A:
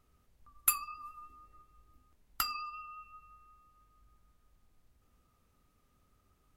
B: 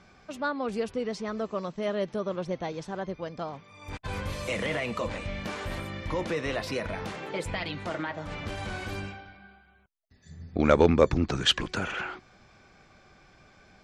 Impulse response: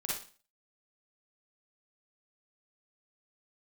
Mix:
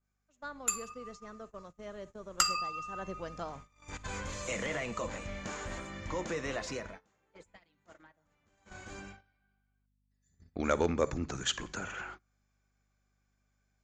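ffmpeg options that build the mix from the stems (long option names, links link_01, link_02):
-filter_complex "[0:a]dynaudnorm=framelen=430:gausssize=7:maxgain=14.5dB,volume=-10dB,asplit=2[link_01][link_02];[link_02]volume=-15.5dB[link_03];[1:a]bandreject=frequency=50:width_type=h:width=6,bandreject=frequency=100:width_type=h:width=6,bandreject=frequency=150:width_type=h:width=6,aeval=exprs='val(0)+0.00501*(sin(2*PI*50*n/s)+sin(2*PI*2*50*n/s)/2+sin(2*PI*3*50*n/s)/3+sin(2*PI*4*50*n/s)/4+sin(2*PI*5*50*n/s)/5)':channel_layout=same,adynamicequalizer=threshold=0.00562:dfrequency=1600:dqfactor=0.7:tfrequency=1600:tqfactor=0.7:attack=5:release=100:ratio=0.375:range=2.5:mode=cutabove:tftype=highshelf,volume=1.5dB,afade=type=in:start_time=2.87:duration=0.24:silence=0.334965,afade=type=out:start_time=6.69:duration=0.3:silence=0.251189,afade=type=in:start_time=8.51:duration=0.49:silence=0.375837,asplit=2[link_04][link_05];[link_05]volume=-19dB[link_06];[2:a]atrim=start_sample=2205[link_07];[link_03][link_06]amix=inputs=2:normalize=0[link_08];[link_08][link_07]afir=irnorm=-1:irlink=0[link_09];[link_01][link_04][link_09]amix=inputs=3:normalize=0,agate=range=-20dB:threshold=-49dB:ratio=16:detection=peak,lowpass=frequency=6900:width_type=q:width=9.2,equalizer=frequency=1600:width_type=o:width=1.3:gain=4.5"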